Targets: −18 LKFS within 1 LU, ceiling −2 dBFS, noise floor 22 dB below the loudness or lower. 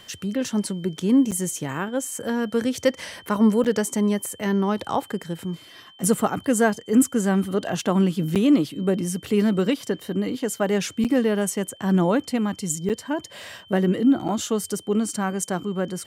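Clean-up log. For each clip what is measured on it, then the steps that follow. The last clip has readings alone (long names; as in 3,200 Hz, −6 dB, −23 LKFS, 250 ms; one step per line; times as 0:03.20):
number of dropouts 6; longest dropout 7.6 ms; interfering tone 3,100 Hz; level of the tone −48 dBFS; integrated loudness −23.5 LKFS; sample peak −6.0 dBFS; target loudness −18.0 LKFS
→ repair the gap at 0:01.31/0:03.64/0:08.35/0:11.04/0:12.89/0:14.28, 7.6 ms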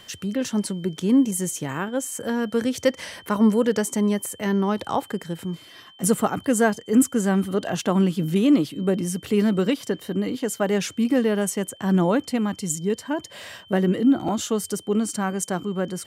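number of dropouts 0; interfering tone 3,100 Hz; level of the tone −48 dBFS
→ notch filter 3,100 Hz, Q 30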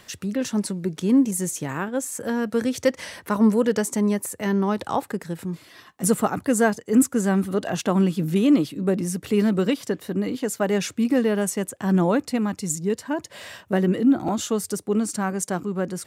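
interfering tone none found; integrated loudness −23.5 LKFS; sample peak −6.0 dBFS; target loudness −18.0 LKFS
→ level +5.5 dB
brickwall limiter −2 dBFS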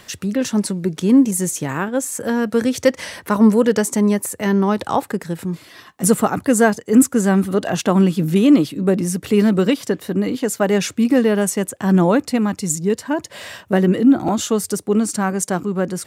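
integrated loudness −18.0 LKFS; sample peak −2.0 dBFS; background noise floor −47 dBFS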